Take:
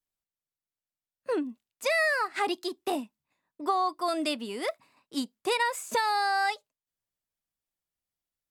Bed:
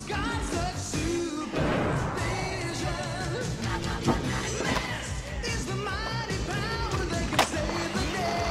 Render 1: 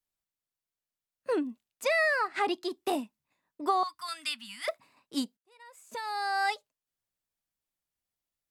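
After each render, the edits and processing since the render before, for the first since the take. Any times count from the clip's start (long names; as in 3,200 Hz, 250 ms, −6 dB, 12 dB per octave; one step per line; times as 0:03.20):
0:01.84–0:02.71: high-shelf EQ 6,400 Hz −10 dB
0:03.83–0:04.68: Chebyshev band-stop filter 120–1,600 Hz
0:05.37–0:06.53: fade in quadratic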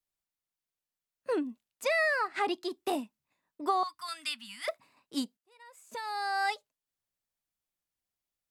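level −1.5 dB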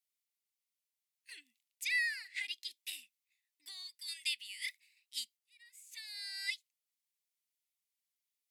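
elliptic high-pass filter 2,000 Hz, stop band 40 dB
parametric band 12,000 Hz +2.5 dB 0.82 octaves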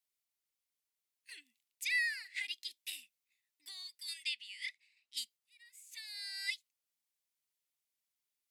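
0:04.23–0:05.17: high-frequency loss of the air 75 metres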